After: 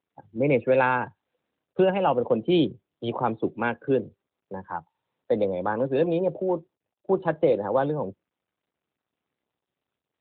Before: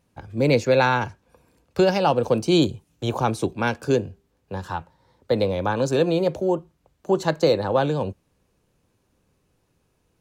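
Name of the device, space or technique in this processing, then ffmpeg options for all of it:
mobile call with aggressive noise cancelling: -af "highpass=160,afftdn=noise_reduction=26:noise_floor=-34,volume=-2dB" -ar 8000 -c:a libopencore_amrnb -b:a 12200

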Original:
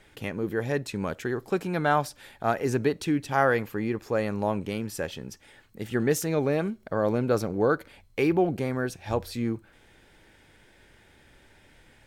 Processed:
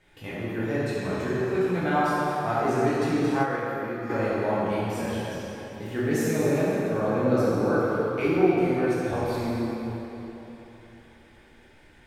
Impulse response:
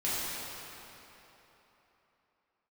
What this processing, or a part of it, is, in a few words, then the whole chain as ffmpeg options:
swimming-pool hall: -filter_complex "[1:a]atrim=start_sample=2205[link_01];[0:a][link_01]afir=irnorm=-1:irlink=0,highshelf=frequency=5200:gain=-4.5,asplit=3[link_02][link_03][link_04];[link_02]afade=type=out:start_time=3.42:duration=0.02[link_05];[link_03]agate=range=-7dB:threshold=-13dB:ratio=16:detection=peak,afade=type=in:start_time=3.42:duration=0.02,afade=type=out:start_time=4.09:duration=0.02[link_06];[link_04]afade=type=in:start_time=4.09:duration=0.02[link_07];[link_05][link_06][link_07]amix=inputs=3:normalize=0,volume=-6.5dB"

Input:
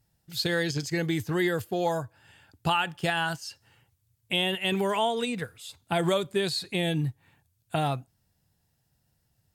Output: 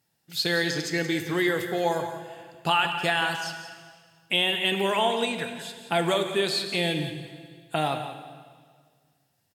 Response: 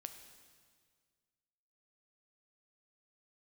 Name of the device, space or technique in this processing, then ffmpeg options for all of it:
PA in a hall: -filter_complex "[0:a]highpass=200,equalizer=frequency=2500:width_type=o:width=1.8:gain=3,aecho=1:1:177:0.251[link_01];[1:a]atrim=start_sample=2205[link_02];[link_01][link_02]afir=irnorm=-1:irlink=0,volume=6dB"

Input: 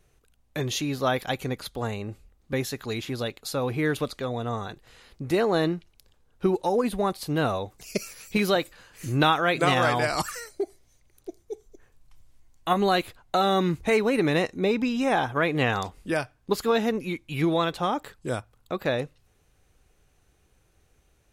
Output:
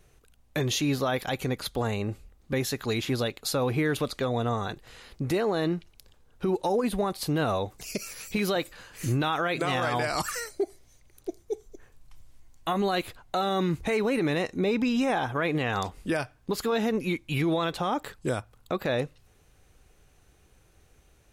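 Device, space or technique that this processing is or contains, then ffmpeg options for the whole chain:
stacked limiters: -af "alimiter=limit=-14.5dB:level=0:latency=1:release=205,alimiter=limit=-18.5dB:level=0:latency=1:release=33,alimiter=limit=-22dB:level=0:latency=1:release=176,volume=4dB"

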